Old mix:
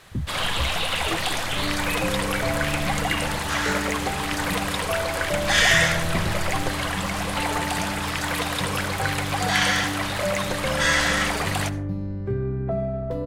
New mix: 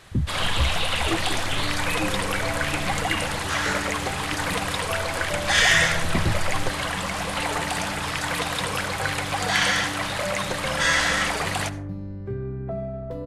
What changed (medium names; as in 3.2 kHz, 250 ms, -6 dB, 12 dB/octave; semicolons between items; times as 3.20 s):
speech +4.5 dB; first sound: add low-pass 12 kHz 24 dB/octave; second sound -4.5 dB